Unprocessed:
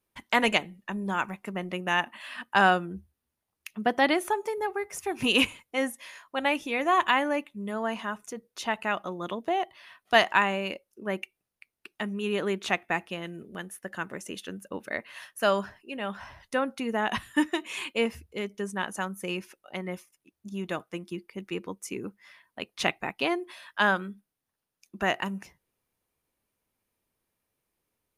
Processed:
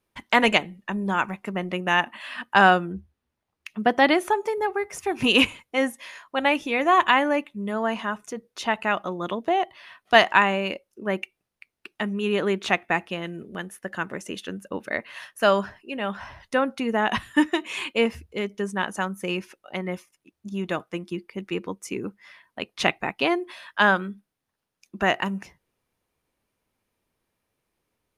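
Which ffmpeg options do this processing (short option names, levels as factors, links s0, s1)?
-filter_complex "[0:a]asettb=1/sr,asplit=3[s0][s1][s2];[s0]atrim=end=2.924[s3];[s1]atrim=start=2.92:end=3.71,asetpts=PTS-STARTPTS,afade=t=in:d=0.004:c=qsin,afade=t=out:st=0.786:d=0.004:c=qsin,highshelf=f=6500:g=-9[s4];[s2]atrim=start=3.706[s5];[s3][s4]acrossfade=d=0.004:c1=hsin:c2=qsin[s6];[s6][s5]acrossfade=d=0.004:c1=qsin:c2=hsin,highshelf=f=8800:g=-10,volume=1.78"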